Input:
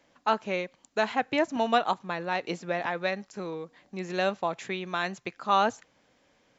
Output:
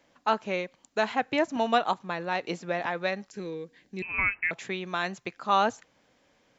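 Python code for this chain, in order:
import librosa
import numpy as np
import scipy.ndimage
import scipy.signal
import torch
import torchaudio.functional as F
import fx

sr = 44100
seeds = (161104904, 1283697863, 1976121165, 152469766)

y = fx.freq_invert(x, sr, carrier_hz=2800, at=(4.02, 4.51))
y = fx.spec_box(y, sr, start_s=3.31, length_s=0.75, low_hz=520.0, high_hz=1500.0, gain_db=-10)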